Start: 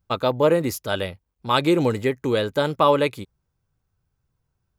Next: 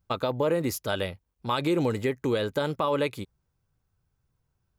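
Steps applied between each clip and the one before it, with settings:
brickwall limiter −12.5 dBFS, peak gain reduction 7.5 dB
downward compressor 1.5 to 1, threshold −26 dBFS, peak gain reduction 4 dB
level −1 dB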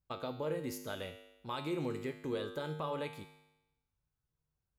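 tuned comb filter 51 Hz, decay 0.95 s, harmonics odd, mix 80%
level −1 dB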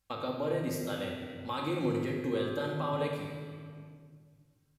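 rectangular room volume 2,200 cubic metres, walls mixed, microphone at 2.2 metres
downsampling to 32,000 Hz
one half of a high-frequency compander encoder only
level +1.5 dB

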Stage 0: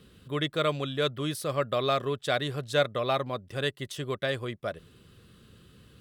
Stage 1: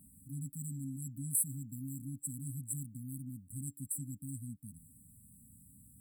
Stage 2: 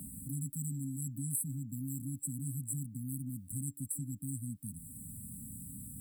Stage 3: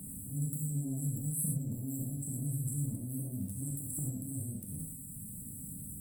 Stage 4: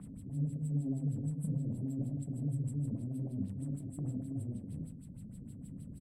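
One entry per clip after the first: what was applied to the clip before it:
bass and treble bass −5 dB, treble +12 dB; brick-wall band-stop 280–7,600 Hz; level −1.5 dB
multiband upward and downward compressor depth 70%; level +3 dB
transient designer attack −11 dB, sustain +11 dB; reverb whose tail is shaped and stops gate 140 ms flat, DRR −2 dB; level −2 dB
background noise violet −68 dBFS; auto-filter low-pass sine 6.4 Hz 370–4,300 Hz; single-tap delay 333 ms −15 dB

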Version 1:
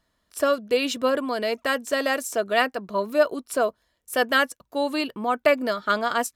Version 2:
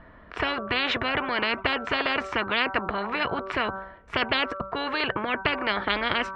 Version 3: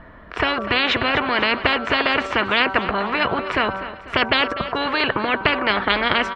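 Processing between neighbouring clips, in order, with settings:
low-pass filter 2,100 Hz 24 dB per octave; hum removal 192.2 Hz, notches 8; every bin compressed towards the loudest bin 10 to 1
repeating echo 247 ms, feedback 50%, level −14 dB; level +6.5 dB

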